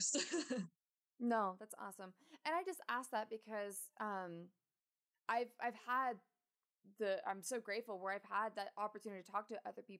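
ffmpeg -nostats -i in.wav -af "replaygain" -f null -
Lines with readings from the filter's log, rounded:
track_gain = +23.3 dB
track_peak = 0.031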